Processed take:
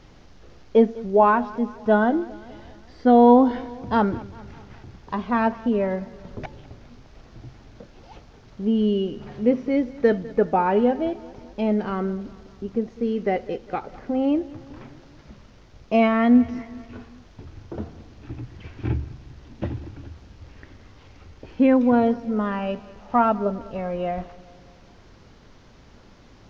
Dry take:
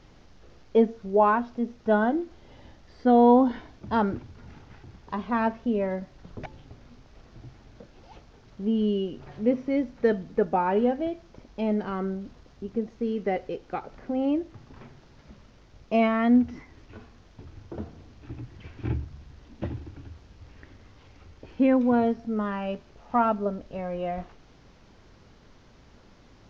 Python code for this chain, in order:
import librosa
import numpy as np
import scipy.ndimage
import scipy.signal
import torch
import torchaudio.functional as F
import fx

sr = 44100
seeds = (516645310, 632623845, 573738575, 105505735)

y = fx.echo_feedback(x, sr, ms=201, feedback_pct=56, wet_db=-20)
y = F.gain(torch.from_numpy(y), 4.0).numpy()